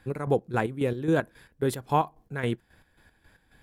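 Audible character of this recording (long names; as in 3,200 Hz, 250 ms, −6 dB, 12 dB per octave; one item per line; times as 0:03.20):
chopped level 3.7 Hz, depth 60%, duty 45%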